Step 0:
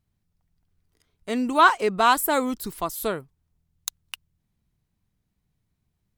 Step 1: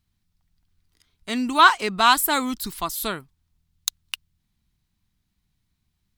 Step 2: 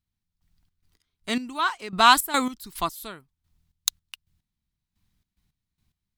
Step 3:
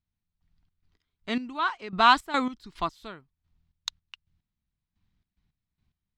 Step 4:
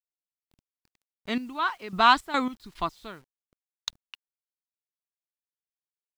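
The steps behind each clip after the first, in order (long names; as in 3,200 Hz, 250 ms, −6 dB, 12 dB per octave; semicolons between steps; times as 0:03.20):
octave-band graphic EQ 125/500/4,000 Hz −5/−11/+5 dB; level +3.5 dB
gate pattern "...xx.x..x." 109 BPM −12 dB; level +1 dB
high-frequency loss of the air 160 metres; level −1.5 dB
bit reduction 10 bits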